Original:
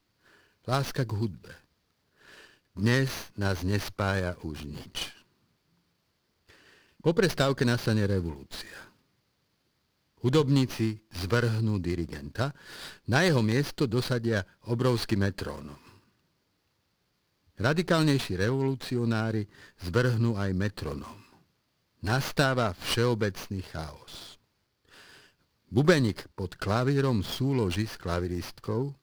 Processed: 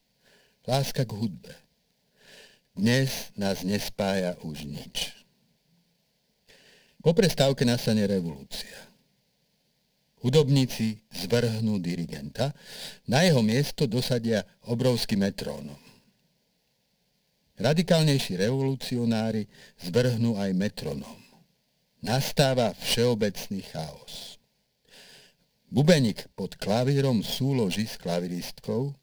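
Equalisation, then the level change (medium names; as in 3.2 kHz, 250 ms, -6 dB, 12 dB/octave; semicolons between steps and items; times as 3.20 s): static phaser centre 330 Hz, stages 6; +5.5 dB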